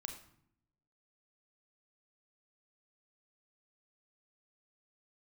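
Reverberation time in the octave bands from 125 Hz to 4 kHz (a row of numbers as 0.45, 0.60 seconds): 1.1, 1.0, 0.75, 0.65, 0.55, 0.50 seconds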